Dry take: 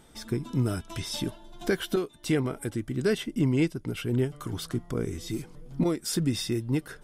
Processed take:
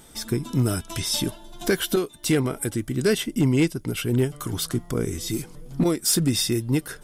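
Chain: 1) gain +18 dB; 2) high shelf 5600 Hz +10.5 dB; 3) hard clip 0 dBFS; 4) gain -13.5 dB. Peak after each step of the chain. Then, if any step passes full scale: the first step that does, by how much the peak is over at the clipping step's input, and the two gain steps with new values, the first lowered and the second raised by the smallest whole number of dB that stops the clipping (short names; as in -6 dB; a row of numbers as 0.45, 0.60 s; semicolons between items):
+2.5, +6.0, 0.0, -13.5 dBFS; step 1, 6.0 dB; step 1 +12 dB, step 4 -7.5 dB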